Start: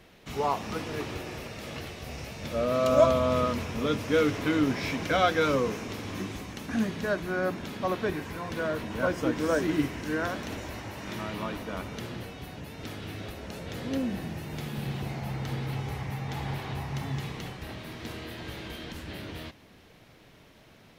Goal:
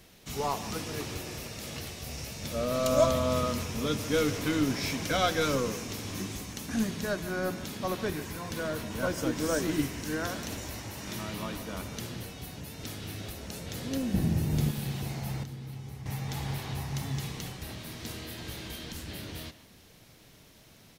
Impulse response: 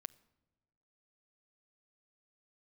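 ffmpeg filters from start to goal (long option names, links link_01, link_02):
-filter_complex "[0:a]asplit=2[link_01][link_02];[link_02]adelay=150,highpass=300,lowpass=3400,asoftclip=type=hard:threshold=-19dB,volume=-14dB[link_03];[link_01][link_03]amix=inputs=2:normalize=0,aeval=exprs='0.355*(cos(1*acos(clip(val(0)/0.355,-1,1)))-cos(1*PI/2))+0.00562*(cos(8*acos(clip(val(0)/0.355,-1,1)))-cos(8*PI/2))':channel_layout=same,asettb=1/sr,asplit=3[link_04][link_05][link_06];[link_04]atrim=end=14.144[link_07];[link_05]atrim=start=14.14:end=14.71,asetpts=PTS-STARTPTS,afade=type=in:duration=0.004:curve=qsin,afade=type=out:start_time=0.566:duration=0.004:curve=qsin,lowshelf=frequency=470:gain=12[link_08];[link_06]atrim=start=14.706[link_09];[link_07][link_08]acrossfade=duration=0.004:curve1=hsin:curve2=qsin[link_10];[link_10][link_09]acrossfade=duration=0.004:curve1=qsin:curve2=hsin,asettb=1/sr,asplit=3[link_11][link_12][link_13];[link_11]atrim=end=15.434[link_14];[link_12]atrim=start=15.43:end=16.06,asetpts=PTS-STARTPTS,afade=type=in:duration=0.004:curve=qsin,afade=type=out:start_time=0.626:duration=0.004:curve=qsin,acrossover=split=110|340[link_15][link_16][link_17];[link_15]acompressor=threshold=-51dB:ratio=4[link_18];[link_16]acompressor=threshold=-41dB:ratio=4[link_19];[link_17]acompressor=threshold=-53dB:ratio=4[link_20];[link_18][link_19][link_20]amix=inputs=3:normalize=0[link_21];[link_13]atrim=start=16.056[link_22];[link_14][link_21]acrossfade=duration=0.004:curve1=hsin:curve2=qsin[link_23];[link_23][link_22]acrossfade=duration=0.004:curve1=qsin:curve2=hsin,bass=frequency=250:gain=4,treble=frequency=4000:gain=13,volume=-4dB"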